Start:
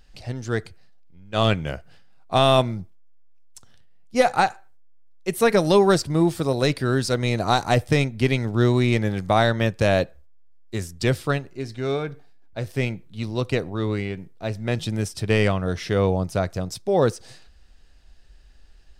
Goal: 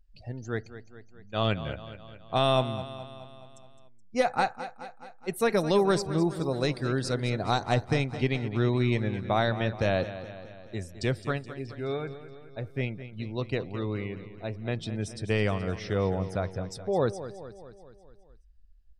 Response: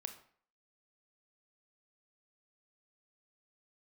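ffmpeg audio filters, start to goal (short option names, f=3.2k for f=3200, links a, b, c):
-af "afftdn=nr=21:nf=-41,aecho=1:1:212|424|636|848|1060|1272:0.224|0.13|0.0753|0.0437|0.0253|0.0147,volume=-7dB"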